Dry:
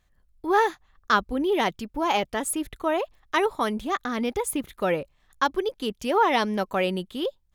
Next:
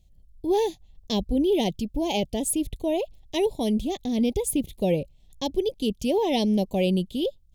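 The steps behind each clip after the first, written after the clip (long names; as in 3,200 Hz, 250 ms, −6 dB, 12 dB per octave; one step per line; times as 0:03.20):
Chebyshev band-stop filter 630–3,000 Hz, order 2
bass and treble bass +11 dB, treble +3 dB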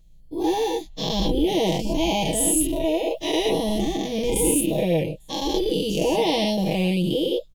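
every bin's largest magnitude spread in time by 240 ms
comb filter 6.2 ms, depth 71%
level −4.5 dB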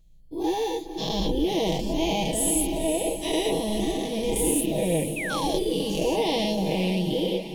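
feedback delay with all-pass diffusion 496 ms, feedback 51%, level −9 dB
sound drawn into the spectrogram fall, 0:05.16–0:05.73, 280–2,700 Hz −28 dBFS
level −3.5 dB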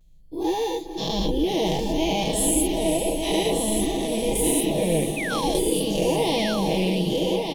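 pitch vibrato 0.35 Hz 22 cents
single-tap delay 1,197 ms −6 dB
level +1.5 dB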